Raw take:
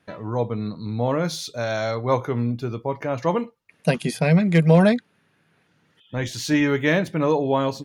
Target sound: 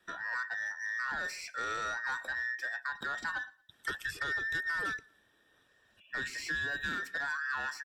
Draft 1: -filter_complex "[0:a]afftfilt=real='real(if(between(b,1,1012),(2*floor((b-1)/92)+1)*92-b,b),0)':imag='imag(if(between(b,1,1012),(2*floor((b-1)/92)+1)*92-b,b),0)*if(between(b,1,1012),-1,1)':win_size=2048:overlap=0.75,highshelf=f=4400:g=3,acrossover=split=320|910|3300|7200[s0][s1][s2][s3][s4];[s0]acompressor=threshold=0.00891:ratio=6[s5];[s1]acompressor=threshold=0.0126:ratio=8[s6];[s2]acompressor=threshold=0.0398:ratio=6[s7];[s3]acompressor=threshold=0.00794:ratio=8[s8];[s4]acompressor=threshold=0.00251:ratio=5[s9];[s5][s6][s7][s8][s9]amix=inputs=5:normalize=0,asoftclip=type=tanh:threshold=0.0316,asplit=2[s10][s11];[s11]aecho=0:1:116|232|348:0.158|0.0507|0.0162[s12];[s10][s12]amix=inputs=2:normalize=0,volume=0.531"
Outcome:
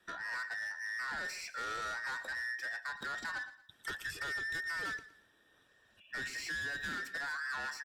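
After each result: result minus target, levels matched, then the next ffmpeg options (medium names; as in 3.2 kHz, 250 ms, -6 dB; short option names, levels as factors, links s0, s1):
echo-to-direct +9 dB; saturation: distortion +8 dB
-filter_complex "[0:a]afftfilt=real='real(if(between(b,1,1012),(2*floor((b-1)/92)+1)*92-b,b),0)':imag='imag(if(between(b,1,1012),(2*floor((b-1)/92)+1)*92-b,b),0)*if(between(b,1,1012),-1,1)':win_size=2048:overlap=0.75,highshelf=f=4400:g=3,acrossover=split=320|910|3300|7200[s0][s1][s2][s3][s4];[s0]acompressor=threshold=0.00891:ratio=6[s5];[s1]acompressor=threshold=0.0126:ratio=8[s6];[s2]acompressor=threshold=0.0398:ratio=6[s7];[s3]acompressor=threshold=0.00794:ratio=8[s8];[s4]acompressor=threshold=0.00251:ratio=5[s9];[s5][s6][s7][s8][s9]amix=inputs=5:normalize=0,asoftclip=type=tanh:threshold=0.0316,asplit=2[s10][s11];[s11]aecho=0:1:116|232:0.0562|0.018[s12];[s10][s12]amix=inputs=2:normalize=0,volume=0.531"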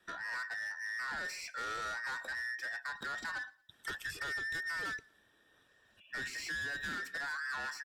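saturation: distortion +8 dB
-filter_complex "[0:a]afftfilt=real='real(if(between(b,1,1012),(2*floor((b-1)/92)+1)*92-b,b),0)':imag='imag(if(between(b,1,1012),(2*floor((b-1)/92)+1)*92-b,b),0)*if(between(b,1,1012),-1,1)':win_size=2048:overlap=0.75,highshelf=f=4400:g=3,acrossover=split=320|910|3300|7200[s0][s1][s2][s3][s4];[s0]acompressor=threshold=0.00891:ratio=6[s5];[s1]acompressor=threshold=0.0126:ratio=8[s6];[s2]acompressor=threshold=0.0398:ratio=6[s7];[s3]acompressor=threshold=0.00794:ratio=8[s8];[s4]acompressor=threshold=0.00251:ratio=5[s9];[s5][s6][s7][s8][s9]amix=inputs=5:normalize=0,asoftclip=type=tanh:threshold=0.0794,asplit=2[s10][s11];[s11]aecho=0:1:116|232:0.0562|0.018[s12];[s10][s12]amix=inputs=2:normalize=0,volume=0.531"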